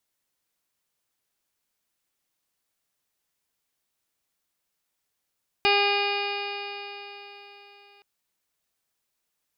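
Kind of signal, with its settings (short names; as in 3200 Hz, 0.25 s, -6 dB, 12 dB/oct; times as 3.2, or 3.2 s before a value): stretched partials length 2.37 s, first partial 404 Hz, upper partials 1/-6/-8/-9/2/-2/-19/-7.5/-15/-7.5/-9 dB, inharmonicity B 0.0005, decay 3.89 s, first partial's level -24 dB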